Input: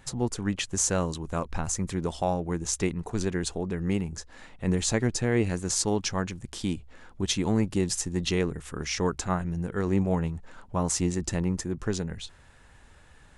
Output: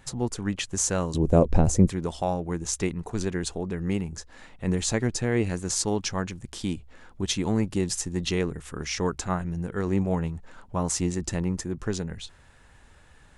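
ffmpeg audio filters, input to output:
-filter_complex "[0:a]asettb=1/sr,asplit=3[a][b][c];[a]atrim=end=1.144[d];[b]atrim=start=1.14:end=1.89,asetpts=PTS-STARTPTS,afade=t=in:d=0.004:c=qsin,afade=t=out:st=0.746:d=0.004:c=qsin,lowshelf=f=800:t=q:w=1.5:g=12[e];[c]atrim=start=1.886[f];[d][e]acrossfade=d=0.004:c1=hsin:c2=qsin[g];[g][f]acrossfade=d=0.004:c1=qsin:c2=hsin"

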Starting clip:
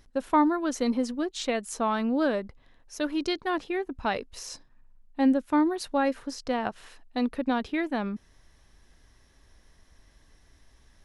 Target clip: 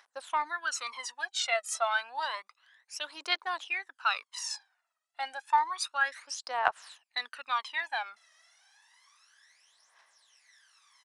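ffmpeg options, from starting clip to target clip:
-af "highpass=f=890:w=0.5412,highpass=f=890:w=1.3066,aphaser=in_gain=1:out_gain=1:delay=1.6:decay=0.75:speed=0.3:type=triangular,aresample=22050,aresample=44100"

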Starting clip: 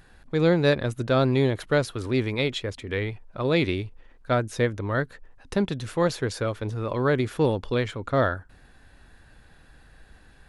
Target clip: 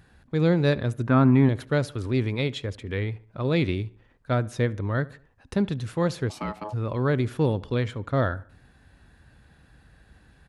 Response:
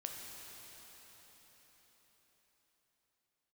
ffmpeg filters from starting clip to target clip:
-filter_complex "[0:a]asettb=1/sr,asplit=3[a][b][c];[a]atrim=end=1.074[d];[b]atrim=start=1.07:end=1.49,asetpts=PTS-STARTPTS,afade=t=in:d=0.004:c=qsin,afade=t=out:st=0.416:d=0.004:c=qsin,equalizer=f=250:t=o:w=1:g=9,equalizer=f=500:t=o:w=1:g=-8,equalizer=f=1k:t=o:w=1:g=9,equalizer=f=2k:t=o:w=1:g=5,equalizer=f=4k:t=o:w=1:g=-12,equalizer=f=8k:t=o:w=1:g=-8[e];[c]atrim=start=1.486[f];[d][e]acrossfade=d=0.004:c1=hsin:c2=qsin[g];[g][f]acrossfade=d=0.004:c1=qsin:c2=hsin,asplit=2[h][i];[i]adelay=72,lowpass=f=3.3k:p=1,volume=-21dB,asplit=2[j][k];[k]adelay=72,lowpass=f=3.3k:p=1,volume=0.45,asplit=2[l][m];[m]adelay=72,lowpass=f=3.3k:p=1,volume=0.45[n];[j][l][n]amix=inputs=3:normalize=0[o];[h][o]amix=inputs=2:normalize=0,asplit=3[p][q][r];[p]afade=t=out:st=6.29:d=0.02[s];[q]aeval=exprs='val(0)*sin(2*PI*740*n/s)':c=same,afade=t=in:st=6.29:d=0.02,afade=t=out:st=6.72:d=0.02[t];[r]afade=t=in:st=6.72:d=0.02[u];[s][t][u]amix=inputs=3:normalize=0,highpass=62,bass=f=250:g=7,treble=f=4k:g=-1,volume=-3.5dB"

